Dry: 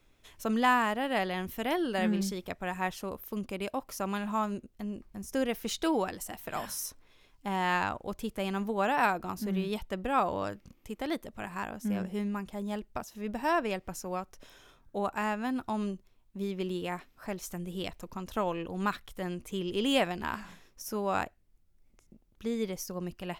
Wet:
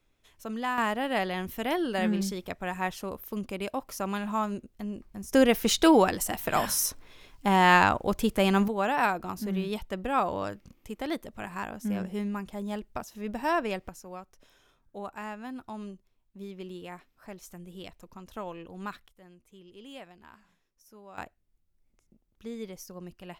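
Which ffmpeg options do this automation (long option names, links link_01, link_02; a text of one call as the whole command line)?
ffmpeg -i in.wav -af "asetnsamples=nb_out_samples=441:pad=0,asendcmd='0.78 volume volume 1.5dB;5.33 volume volume 9.5dB;8.68 volume volume 1dB;13.89 volume volume -7dB;19.08 volume volume -18.5dB;21.18 volume volume -6dB',volume=-6dB" out.wav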